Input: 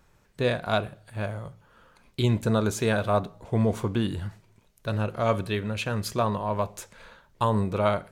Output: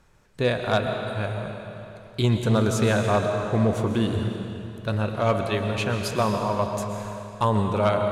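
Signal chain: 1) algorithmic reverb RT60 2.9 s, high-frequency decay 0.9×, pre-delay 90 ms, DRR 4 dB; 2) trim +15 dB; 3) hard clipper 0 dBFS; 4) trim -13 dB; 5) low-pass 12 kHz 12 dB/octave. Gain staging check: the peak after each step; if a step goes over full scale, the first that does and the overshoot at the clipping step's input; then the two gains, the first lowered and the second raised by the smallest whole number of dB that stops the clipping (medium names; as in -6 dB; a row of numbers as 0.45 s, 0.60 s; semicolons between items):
-10.0 dBFS, +5.0 dBFS, 0.0 dBFS, -13.0 dBFS, -12.5 dBFS; step 2, 5.0 dB; step 2 +10 dB, step 4 -8 dB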